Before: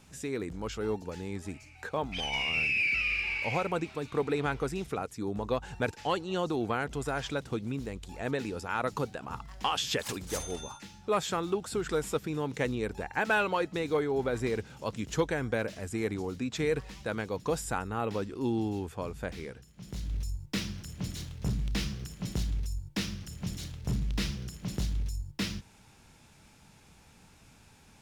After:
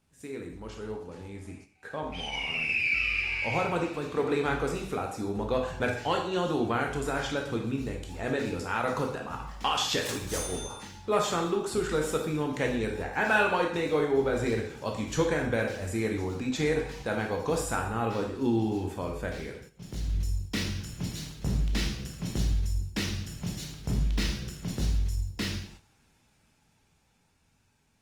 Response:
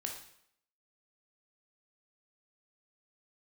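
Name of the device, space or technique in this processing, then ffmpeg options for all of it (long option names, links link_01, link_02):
speakerphone in a meeting room: -filter_complex "[0:a]asplit=3[link_01][link_02][link_03];[link_01]afade=type=out:start_time=16.3:duration=0.02[link_04];[link_02]adynamicequalizer=threshold=0.002:dfrequency=790:dqfactor=3.8:tfrequency=790:tqfactor=3.8:attack=5:release=100:ratio=0.375:range=3.5:mode=boostabove:tftype=bell,afade=type=in:start_time=16.3:duration=0.02,afade=type=out:start_time=17.4:duration=0.02[link_05];[link_03]afade=type=in:start_time=17.4:duration=0.02[link_06];[link_04][link_05][link_06]amix=inputs=3:normalize=0[link_07];[1:a]atrim=start_sample=2205[link_08];[link_07][link_08]afir=irnorm=-1:irlink=0,dynaudnorm=framelen=400:gausssize=13:maxgain=7dB,agate=range=-8dB:threshold=-45dB:ratio=16:detection=peak,volume=-3.5dB" -ar 48000 -c:a libopus -b:a 32k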